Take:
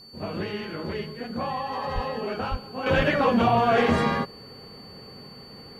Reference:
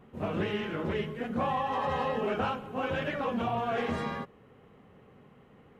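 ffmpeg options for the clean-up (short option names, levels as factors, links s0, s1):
-filter_complex "[0:a]bandreject=f=4500:w=30,asplit=3[s0][s1][s2];[s0]afade=t=out:st=1.94:d=0.02[s3];[s1]highpass=f=140:w=0.5412,highpass=f=140:w=1.3066,afade=t=in:st=1.94:d=0.02,afade=t=out:st=2.06:d=0.02[s4];[s2]afade=t=in:st=2.06:d=0.02[s5];[s3][s4][s5]amix=inputs=3:normalize=0,asplit=3[s6][s7][s8];[s6]afade=t=out:st=2.5:d=0.02[s9];[s7]highpass=f=140:w=0.5412,highpass=f=140:w=1.3066,afade=t=in:st=2.5:d=0.02,afade=t=out:st=2.62:d=0.02[s10];[s8]afade=t=in:st=2.62:d=0.02[s11];[s9][s10][s11]amix=inputs=3:normalize=0,asplit=3[s12][s13][s14];[s12]afade=t=out:st=2.96:d=0.02[s15];[s13]highpass=f=140:w=0.5412,highpass=f=140:w=1.3066,afade=t=in:st=2.96:d=0.02,afade=t=out:st=3.08:d=0.02[s16];[s14]afade=t=in:st=3.08:d=0.02[s17];[s15][s16][s17]amix=inputs=3:normalize=0,agate=range=0.0891:threshold=0.0141,asetnsamples=n=441:p=0,asendcmd='2.86 volume volume -10.5dB',volume=1"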